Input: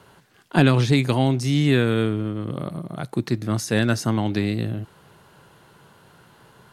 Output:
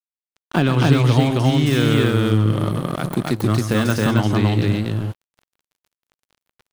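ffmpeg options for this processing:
-filter_complex "[0:a]acompressor=threshold=-26dB:ratio=2,equalizer=f=100:t=o:w=0.33:g=6,equalizer=f=1.25k:t=o:w=0.33:g=4,equalizer=f=3.15k:t=o:w=0.33:g=4,deesser=0.95,aecho=1:1:131.2|271.1:0.316|0.891,aeval=exprs='sgn(val(0))*max(abs(val(0))-0.0112,0)':c=same,asettb=1/sr,asplit=3[a][b][c];[a]atrim=end=1.664[d];[b]atrim=start=1.66:end=4.14,asetpts=PTS-STARTPTS,afade=t=in:d=0.004:c=qsin,afade=t=out:st=2.476:d=0.004:c=qsin,highshelf=f=8k:g=9[e];[c]atrim=start=4.136[f];[d][e]acrossfade=d=0.004:c1=hsin:c2=qsin[g];[g][f]acrossfade=d=0.004:c1=qsin:c2=hsin,volume=7dB"

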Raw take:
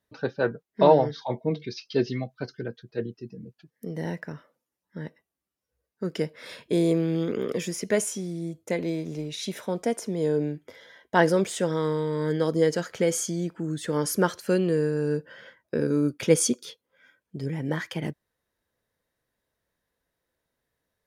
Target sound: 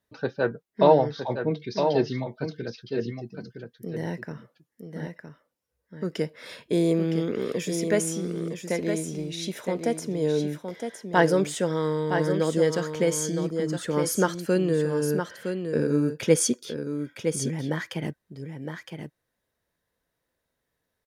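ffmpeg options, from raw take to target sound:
-af "aecho=1:1:963:0.447"

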